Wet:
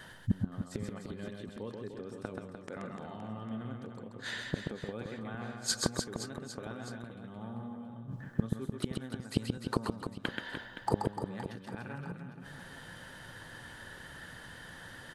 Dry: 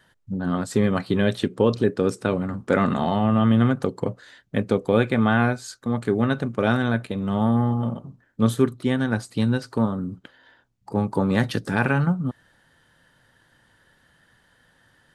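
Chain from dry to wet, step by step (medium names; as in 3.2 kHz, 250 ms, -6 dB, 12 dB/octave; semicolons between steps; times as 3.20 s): inverted gate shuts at -25 dBFS, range -33 dB; on a send: reverse bouncing-ball echo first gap 130 ms, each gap 1.3×, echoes 5; on the sum: trim +9.5 dB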